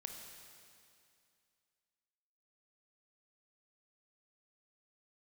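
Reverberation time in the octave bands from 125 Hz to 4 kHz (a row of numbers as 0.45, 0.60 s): 2.4, 2.5, 2.4, 2.4, 2.4, 2.4 s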